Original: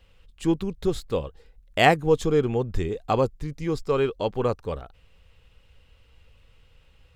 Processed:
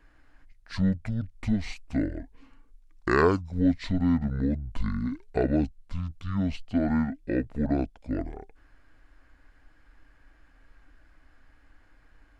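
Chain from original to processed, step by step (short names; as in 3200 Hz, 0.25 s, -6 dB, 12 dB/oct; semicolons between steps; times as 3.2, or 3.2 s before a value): compressor 1.5:1, threshold -26 dBFS, peak gain reduction 5.5 dB; speed mistake 78 rpm record played at 45 rpm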